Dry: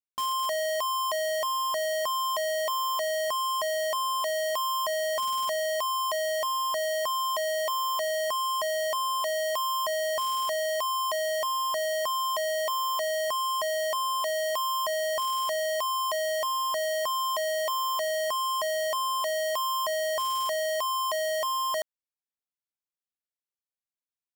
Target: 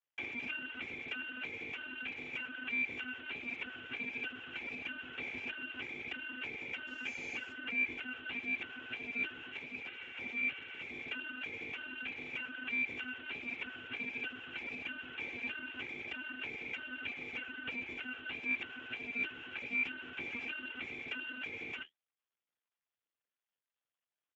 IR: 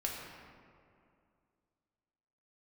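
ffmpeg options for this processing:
-filter_complex "[0:a]asettb=1/sr,asplit=3[a][b][c];[a]atrim=end=9.534[d];[b]atrim=start=9.53:end=10.92,asetpts=PTS-STARTPTS,afade=t=in:d=0.004:c=qsin,afade=t=out:st=1.386:d=0.004:c=qsin,aeval=exprs='val(0)+0.0141*sin(2*PI*1100*n/s)':c=same[e];[c]atrim=start=10.916[f];[d][e]acrossfade=d=0.004:c1=hsin:c2=qsin[g];[g][f]acrossfade=d=0.004:c1=qsin:c2=hsin,alimiter=level_in=12dB:limit=-24dB:level=0:latency=1,volume=-12dB,aecho=1:1:5.5:0.68,lowpass=f=2.9k:t=q:w=0.5098,lowpass=f=2.9k:t=q:w=0.6013,lowpass=f=2.9k:t=q:w=0.9,lowpass=f=2.9k:t=q:w=2.563,afreqshift=-3400,asettb=1/sr,asplit=3[h][i][j];[h]atrim=end=6.874[k];[i]atrim=start=6.87:end=7.53,asetpts=PTS-STARTPTS,afade=t=in:d=0.004:c=qsin,afade=t=out:st=0.656:d=0.004:c=qsin,acrusher=bits=6:mode=log:mix=0:aa=0.000001[l];[j]atrim=start=7.526[m];[k][l]acrossfade=d=0.004:c1=hsin:c2=qsin[n];[n][m]acrossfade=d=0.004:c1=qsin:c2=hsin,flanger=delay=5.7:depth=9.5:regen=-49:speed=1.4:shape=triangular,volume=10.5dB" -ar 16000 -c:a libspeex -b:a 8k

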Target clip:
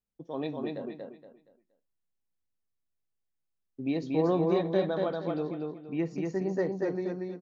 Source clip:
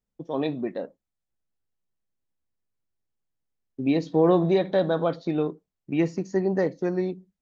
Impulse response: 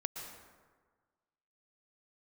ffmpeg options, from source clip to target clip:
-filter_complex "[0:a]asettb=1/sr,asplit=3[a][b][c];[a]atrim=end=5.204[d];[b]atrim=start=5.2:end=6.11,asetpts=PTS-STARTPTS,afade=t=in:d=0.004:c=qsin,afade=t=out:st=0.906:d=0.004:c=qsin,highshelf=f=3.9k:g=-9[e];[c]atrim=start=6.106[f];[d][e]acrossfade=d=0.004:c1=hsin:c2=qsin[g];[g][f]acrossfade=d=0.004:c1=qsin:c2=hsin,aecho=1:1:235|470|705|940:0.708|0.205|0.0595|0.0173,volume=-7.5dB"

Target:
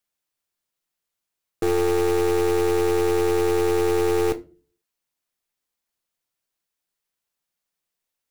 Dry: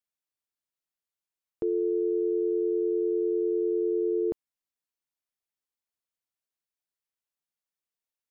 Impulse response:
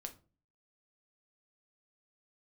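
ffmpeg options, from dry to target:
-filter_complex "[0:a]acrusher=bits=2:mode=log:mix=0:aa=0.000001,asplit=2[a][b];[1:a]atrim=start_sample=2205[c];[b][c]afir=irnorm=-1:irlink=0,volume=4.5dB[d];[a][d]amix=inputs=2:normalize=0,aeval=exprs='(tanh(10*val(0)+0.65)-tanh(0.65))/10':c=same,volume=4dB"

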